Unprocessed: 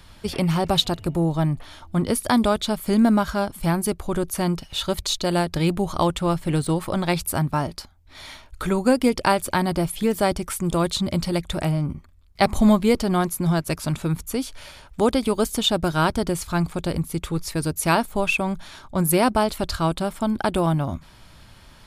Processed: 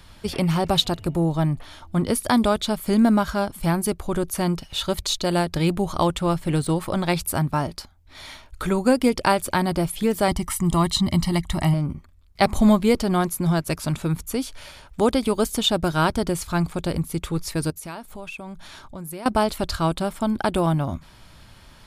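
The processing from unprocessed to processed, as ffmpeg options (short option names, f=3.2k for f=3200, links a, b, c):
-filter_complex "[0:a]asettb=1/sr,asplit=3[a][b][c];[a]atrim=end=10.284[d];[b]atrim=start=10.28:end=11.74,asetpts=PTS-STARTPTS,afade=t=in:d=0.004:c=qsin,afade=t=out:st=1.456:d=0.004:c=qsin,aecho=1:1:1:0.76,atrim=end_sample=64386[e];[c]atrim=start=11.736[f];[d][e]acrossfade=d=0.004:c1=hsin:c2=qsin[g];[g][f]acrossfade=d=0.004:c1=qsin:c2=hsin,asettb=1/sr,asplit=3[h][i][j];[h]atrim=end=17.704[k];[i]atrim=start=17.7:end=19.26,asetpts=PTS-STARTPTS,afade=t=in:d=0.004:c=qsin,afade=t=out:st=1.556:d=0.004:c=qsin,acompressor=threshold=-37dB:ratio=3:attack=3.2:release=140:knee=1:detection=peak[l];[j]atrim=start=19.256[m];[k][l]acrossfade=d=0.004:c1=hsin:c2=qsin[n];[n][m]acrossfade=d=0.004:c1=qsin:c2=hsin"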